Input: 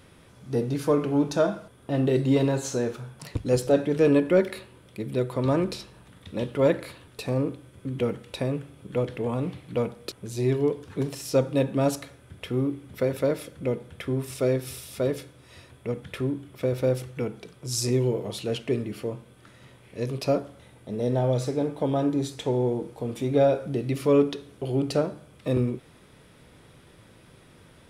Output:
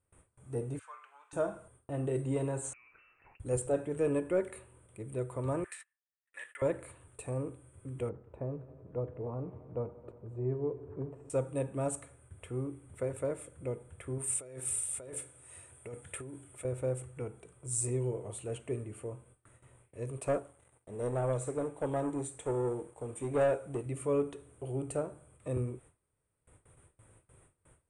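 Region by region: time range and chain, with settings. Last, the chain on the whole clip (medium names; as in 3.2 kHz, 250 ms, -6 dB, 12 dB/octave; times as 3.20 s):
0.79–1.33 s: high-pass 1.2 kHz 24 dB/octave + distance through air 140 m
2.73–3.40 s: compression 16:1, threshold -38 dBFS + bass shelf 380 Hz -10.5 dB + frequency inversion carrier 2.8 kHz
5.64–6.62 s: gate -41 dBFS, range -27 dB + resonant high-pass 1.8 kHz, resonance Q 13
8.09–11.30 s: low-pass 1 kHz + multi-head delay 90 ms, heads all three, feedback 69%, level -22.5 dB
14.18–16.65 s: tilt EQ +2 dB/octave + band-stop 1.1 kHz, Q 8.9 + compressor with a negative ratio -33 dBFS
20.17–23.86 s: waveshaping leveller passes 2 + bass shelf 150 Hz -7.5 dB + upward expansion, over -28 dBFS
whole clip: gate with hold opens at -42 dBFS; FFT filter 100 Hz 0 dB, 210 Hz -13 dB, 360 Hz -6 dB, 1.2 kHz -5 dB, 1.8 kHz -9 dB, 2.6 kHz -10 dB, 5.1 kHz -26 dB, 8.8 kHz +11 dB, 13 kHz -28 dB; trim -4 dB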